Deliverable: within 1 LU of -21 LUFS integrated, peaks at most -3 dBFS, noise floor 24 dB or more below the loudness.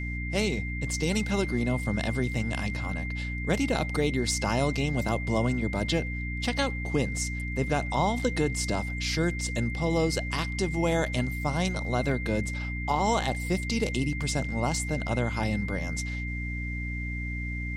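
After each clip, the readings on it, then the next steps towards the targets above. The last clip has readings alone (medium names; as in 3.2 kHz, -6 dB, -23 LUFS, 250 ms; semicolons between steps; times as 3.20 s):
hum 60 Hz; highest harmonic 300 Hz; hum level -31 dBFS; steady tone 2.1 kHz; tone level -36 dBFS; loudness -28.5 LUFS; peak level -13.0 dBFS; loudness target -21.0 LUFS
-> hum notches 60/120/180/240/300 Hz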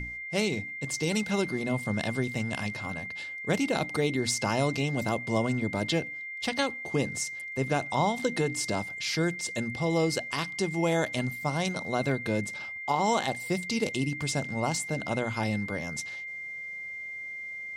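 hum not found; steady tone 2.1 kHz; tone level -36 dBFS
-> band-stop 2.1 kHz, Q 30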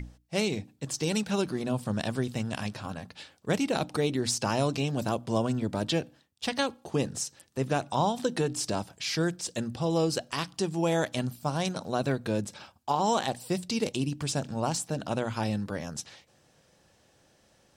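steady tone not found; loudness -30.5 LUFS; peak level -14.5 dBFS; loudness target -21.0 LUFS
-> trim +9.5 dB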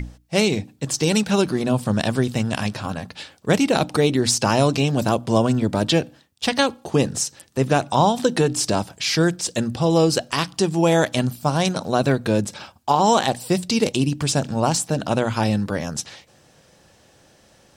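loudness -21.0 LUFS; peak level -5.0 dBFS; noise floor -55 dBFS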